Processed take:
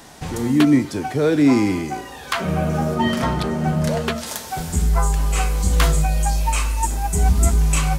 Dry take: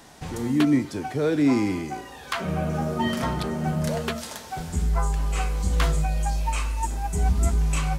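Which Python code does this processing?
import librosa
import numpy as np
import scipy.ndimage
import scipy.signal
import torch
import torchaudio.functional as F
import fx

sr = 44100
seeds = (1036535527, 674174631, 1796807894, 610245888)

y = fx.high_shelf(x, sr, hz=7800.0, db=fx.steps((0.0, 2.5), (2.94, -4.0), (4.26, 9.5)))
y = F.gain(torch.from_numpy(y), 5.5).numpy()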